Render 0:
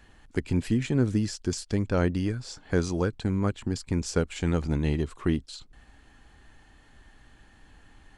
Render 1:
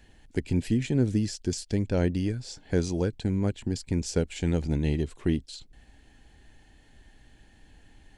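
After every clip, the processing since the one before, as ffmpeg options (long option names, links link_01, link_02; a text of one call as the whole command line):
ffmpeg -i in.wav -af "equalizer=frequency=1200:width_type=o:width=0.59:gain=-13.5" out.wav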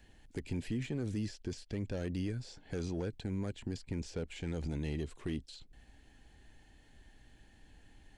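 ffmpeg -i in.wav -filter_complex "[0:a]acrossover=split=520|3700[link_01][link_02][link_03];[link_01]alimiter=level_in=1.5dB:limit=-24dB:level=0:latency=1,volume=-1.5dB[link_04];[link_02]asoftclip=type=tanh:threshold=-36.5dB[link_05];[link_03]acompressor=threshold=-52dB:ratio=6[link_06];[link_04][link_05][link_06]amix=inputs=3:normalize=0,volume=-4.5dB" out.wav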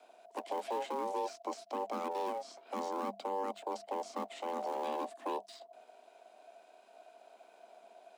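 ffmpeg -i in.wav -filter_complex "[0:a]asplit=2[link_01][link_02];[link_02]acrusher=samples=37:mix=1:aa=0.000001:lfo=1:lforange=59.2:lforate=0.5,volume=-11dB[link_03];[link_01][link_03]amix=inputs=2:normalize=0,aeval=exprs='val(0)*sin(2*PI*480*n/s)':channel_layout=same,afreqshift=200,volume=1dB" out.wav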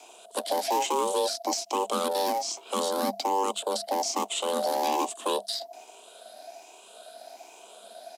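ffmpeg -i in.wav -af "afftfilt=real='re*pow(10,9/40*sin(2*PI*(0.71*log(max(b,1)*sr/1024/100)/log(2)-(1.2)*(pts-256)/sr)))':imag='im*pow(10,9/40*sin(2*PI*(0.71*log(max(b,1)*sr/1024/100)/log(2)-(1.2)*(pts-256)/sr)))':win_size=1024:overlap=0.75,aexciter=amount=3.5:drive=5.7:freq=3000,aresample=32000,aresample=44100,volume=8.5dB" out.wav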